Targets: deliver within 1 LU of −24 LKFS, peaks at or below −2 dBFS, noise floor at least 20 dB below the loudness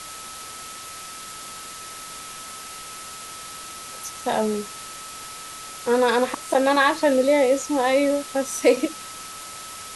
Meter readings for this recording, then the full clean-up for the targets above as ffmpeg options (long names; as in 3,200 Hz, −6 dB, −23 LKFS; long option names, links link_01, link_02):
interfering tone 1,300 Hz; level of the tone −40 dBFS; background noise floor −38 dBFS; target noise floor −42 dBFS; integrated loudness −21.5 LKFS; sample peak −5.5 dBFS; target loudness −24.0 LKFS
→ -af "bandreject=frequency=1300:width=30"
-af "afftdn=noise_reduction=6:noise_floor=-38"
-af "volume=-2.5dB"